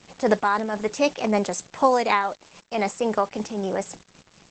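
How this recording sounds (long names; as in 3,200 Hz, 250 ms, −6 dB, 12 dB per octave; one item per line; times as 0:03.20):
tremolo triangle 3.9 Hz, depth 40%
a quantiser's noise floor 8 bits, dither none
Opus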